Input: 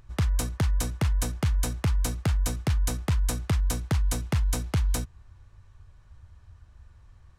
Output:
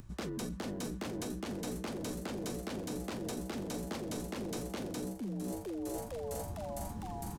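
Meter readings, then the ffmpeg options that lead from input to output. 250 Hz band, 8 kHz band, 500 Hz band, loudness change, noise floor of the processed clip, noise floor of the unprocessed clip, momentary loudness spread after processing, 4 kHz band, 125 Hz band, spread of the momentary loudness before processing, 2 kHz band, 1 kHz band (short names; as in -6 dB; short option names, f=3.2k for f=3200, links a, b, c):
-2.0 dB, -9.5 dB, +1.0 dB, -12.0 dB, -45 dBFS, -55 dBFS, 1 LU, -8.0 dB, -16.5 dB, 1 LU, -9.0 dB, -4.5 dB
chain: -filter_complex "[0:a]asplit=8[a][b][c][d][e][f][g][h];[b]adelay=456,afreqshift=130,volume=-13.5dB[i];[c]adelay=912,afreqshift=260,volume=-17.7dB[j];[d]adelay=1368,afreqshift=390,volume=-21.8dB[k];[e]adelay=1824,afreqshift=520,volume=-26dB[l];[f]adelay=2280,afreqshift=650,volume=-30.1dB[m];[g]adelay=2736,afreqshift=780,volume=-34.3dB[n];[h]adelay=3192,afreqshift=910,volume=-38.4dB[o];[a][i][j][k][l][m][n][o]amix=inputs=8:normalize=0,acrossover=split=310|2600[p][q][r];[p]aeval=exprs='0.0188*(abs(mod(val(0)/0.0188+3,4)-2)-1)':c=same[s];[s][q][r]amix=inputs=3:normalize=0,acrossover=split=5400[t][u];[u]acompressor=threshold=-49dB:ratio=4:attack=1:release=60[v];[t][v]amix=inputs=2:normalize=0,asoftclip=type=tanh:threshold=-26dB,equalizer=f=220:w=0.59:g=14.5,areverse,acompressor=threshold=-41dB:ratio=12,areverse,crystalizer=i=2.5:c=0,volume=4.5dB"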